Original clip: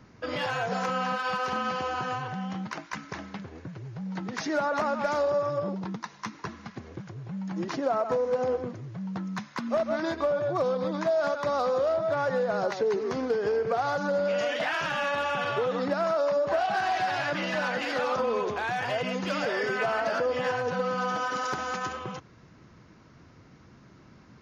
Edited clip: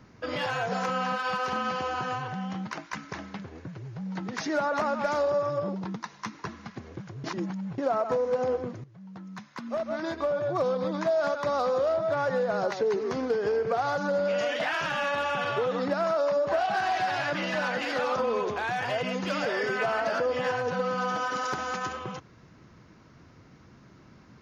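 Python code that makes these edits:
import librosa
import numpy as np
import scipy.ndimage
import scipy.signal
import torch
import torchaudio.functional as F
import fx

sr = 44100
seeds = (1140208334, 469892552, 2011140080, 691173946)

y = fx.edit(x, sr, fx.reverse_span(start_s=7.24, length_s=0.54),
    fx.fade_in_from(start_s=8.84, length_s=1.77, floor_db=-15.0), tone=tone)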